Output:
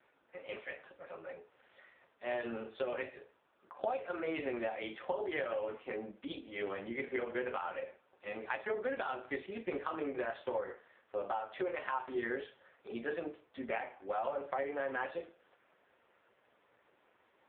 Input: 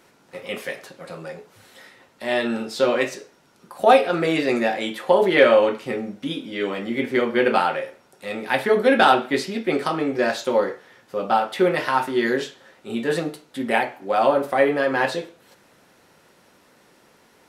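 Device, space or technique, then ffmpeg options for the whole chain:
voicemail: -af "highpass=370,lowpass=3.1k,acompressor=threshold=-23dB:ratio=10,volume=-8dB" -ar 8000 -c:a libopencore_amrnb -b:a 5150

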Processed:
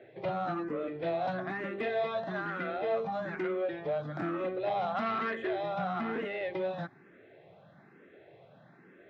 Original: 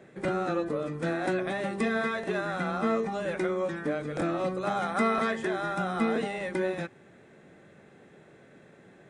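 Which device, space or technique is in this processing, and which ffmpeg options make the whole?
barber-pole phaser into a guitar amplifier: -filter_complex "[0:a]asplit=2[a][b];[b]afreqshift=1.1[c];[a][c]amix=inputs=2:normalize=1,asoftclip=type=tanh:threshold=-27dB,highpass=95,equalizer=f=120:t=q:w=4:g=4,equalizer=f=220:t=q:w=4:g=-5,equalizer=f=670:t=q:w=4:g=6,lowpass=f=4.1k:w=0.5412,lowpass=f=4.1k:w=1.3066"

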